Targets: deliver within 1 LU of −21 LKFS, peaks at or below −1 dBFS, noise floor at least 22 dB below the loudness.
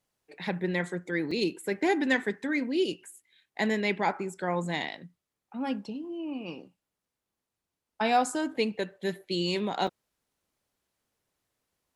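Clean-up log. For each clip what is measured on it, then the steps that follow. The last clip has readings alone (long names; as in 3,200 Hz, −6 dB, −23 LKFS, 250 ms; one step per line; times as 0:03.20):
number of dropouts 2; longest dropout 4.2 ms; integrated loudness −30.0 LKFS; sample peak −12.0 dBFS; target loudness −21.0 LKFS
→ repair the gap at 0:01.31/0:09.87, 4.2 ms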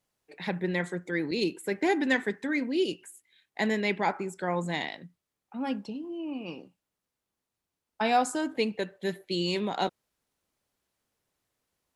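number of dropouts 0; integrated loudness −30.0 LKFS; sample peak −12.0 dBFS; target loudness −21.0 LKFS
→ level +9 dB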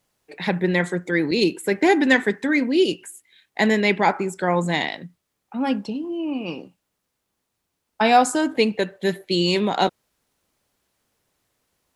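integrated loudness −21.0 LKFS; sample peak −3.0 dBFS; background noise floor −78 dBFS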